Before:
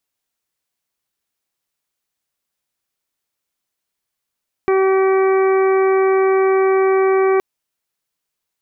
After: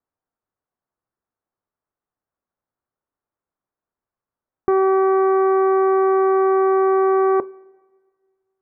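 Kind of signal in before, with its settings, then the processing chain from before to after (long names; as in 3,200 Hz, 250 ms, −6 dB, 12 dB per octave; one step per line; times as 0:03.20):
steady harmonic partials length 2.72 s, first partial 383 Hz, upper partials −11/−11/−19.5/−19/−17.5 dB, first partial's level −12 dB
low-pass filter 1,400 Hz 24 dB per octave
coupled-rooms reverb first 0.23 s, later 1.7 s, from −19 dB, DRR 15 dB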